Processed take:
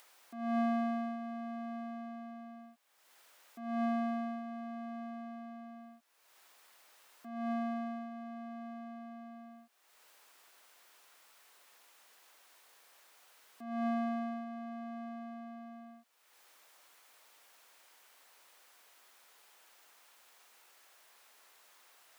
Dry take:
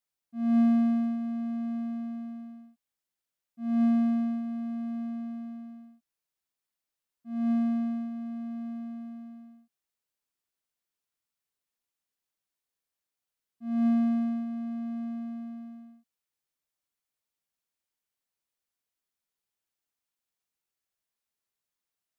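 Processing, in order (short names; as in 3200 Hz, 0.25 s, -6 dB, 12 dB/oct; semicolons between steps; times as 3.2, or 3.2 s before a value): HPF 650 Hz 12 dB/oct; high shelf 2600 Hz -11 dB; upward compressor, threshold -48 dBFS; gain +7 dB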